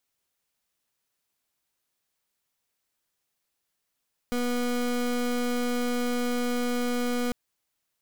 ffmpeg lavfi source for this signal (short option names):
-f lavfi -i "aevalsrc='0.0447*(2*lt(mod(244*t,1),0.27)-1)':d=3:s=44100"